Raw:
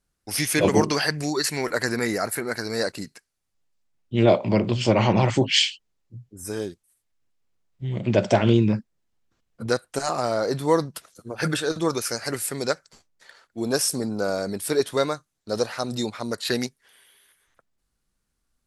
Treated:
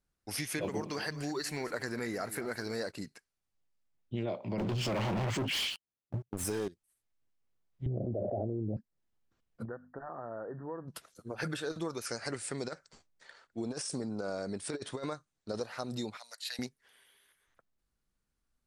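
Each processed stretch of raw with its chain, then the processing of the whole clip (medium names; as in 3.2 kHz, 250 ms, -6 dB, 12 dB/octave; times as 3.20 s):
0.64–2.91 s: companding laws mixed up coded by mu + delay 212 ms -16.5 dB
4.58–6.68 s: high-pass 74 Hz + waveshaping leveller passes 5 + compression, threshold -14 dBFS
7.86–8.77 s: steep low-pass 760 Hz 96 dB/octave + peaking EQ 180 Hz -10 dB 0.8 oct + level flattener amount 100%
9.65–10.88 s: hum notches 50/100/150/200/250 Hz + compression 2.5:1, threshold -37 dBFS + brick-wall FIR low-pass 1.9 kHz
12.06–15.61 s: compressor with a negative ratio -25 dBFS, ratio -0.5 + brick-wall FIR low-pass 10 kHz
16.17–16.59 s: inverse Chebyshev high-pass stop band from 390 Hz + peaking EQ 1.1 kHz -14 dB 1.4 oct + tape noise reduction on one side only encoder only
whole clip: treble shelf 4.2 kHz -5 dB; compression 5:1, threshold -27 dBFS; trim -6 dB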